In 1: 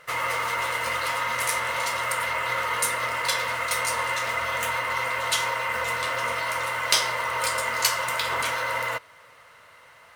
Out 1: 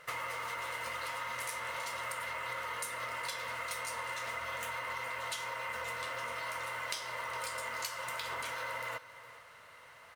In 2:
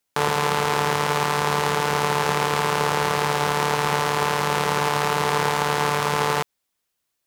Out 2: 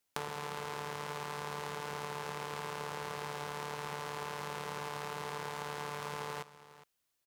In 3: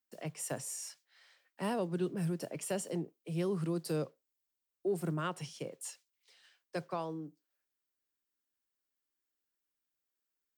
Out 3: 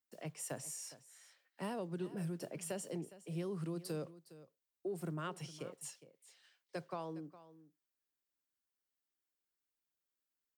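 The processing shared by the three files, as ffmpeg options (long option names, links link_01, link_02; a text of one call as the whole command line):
ffmpeg -i in.wav -af "acompressor=threshold=-32dB:ratio=8,aecho=1:1:411:0.15,volume=-4dB" out.wav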